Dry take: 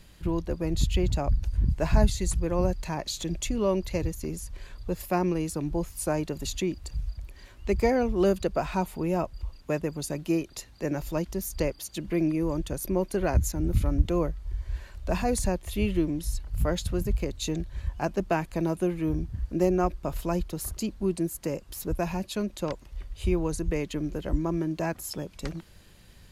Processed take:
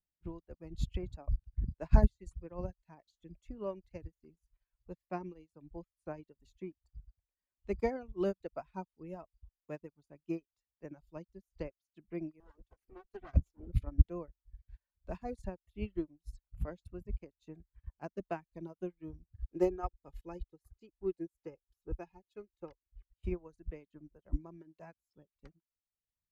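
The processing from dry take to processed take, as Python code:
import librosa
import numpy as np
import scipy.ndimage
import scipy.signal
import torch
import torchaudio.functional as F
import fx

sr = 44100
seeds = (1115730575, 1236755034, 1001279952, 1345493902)

y = fx.lower_of_two(x, sr, delay_ms=2.6, at=(12.4, 13.68))
y = fx.comb(y, sr, ms=2.4, depth=0.58, at=(19.29, 23.04))
y = fx.dereverb_blind(y, sr, rt60_s=1.1)
y = fx.lowpass(y, sr, hz=2300.0, slope=6)
y = fx.upward_expand(y, sr, threshold_db=-45.0, expansion=2.5)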